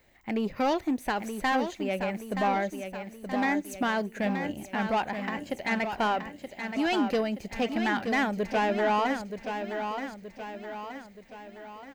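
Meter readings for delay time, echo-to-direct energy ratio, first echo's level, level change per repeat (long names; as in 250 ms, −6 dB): 925 ms, −6.0 dB, −7.5 dB, −6.0 dB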